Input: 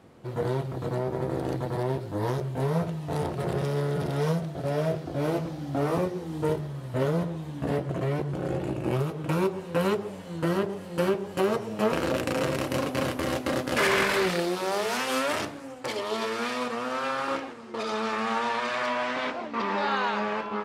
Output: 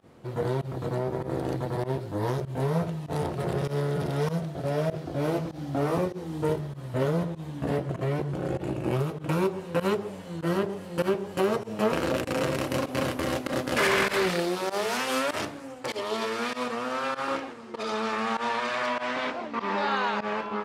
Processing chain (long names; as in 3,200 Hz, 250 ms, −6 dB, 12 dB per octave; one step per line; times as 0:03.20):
fake sidechain pumping 98 BPM, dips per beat 1, −21 dB, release 85 ms